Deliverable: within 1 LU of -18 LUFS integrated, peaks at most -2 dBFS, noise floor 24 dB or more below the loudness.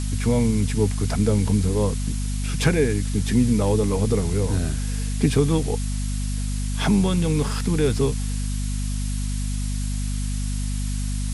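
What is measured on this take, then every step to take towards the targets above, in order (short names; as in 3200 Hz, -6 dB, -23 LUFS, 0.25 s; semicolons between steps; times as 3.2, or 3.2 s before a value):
hum 50 Hz; harmonics up to 250 Hz; hum level -23 dBFS; noise floor -25 dBFS; noise floor target -48 dBFS; loudness -23.5 LUFS; peak -5.0 dBFS; loudness target -18.0 LUFS
-> notches 50/100/150/200/250 Hz; noise print and reduce 23 dB; gain +5.5 dB; limiter -2 dBFS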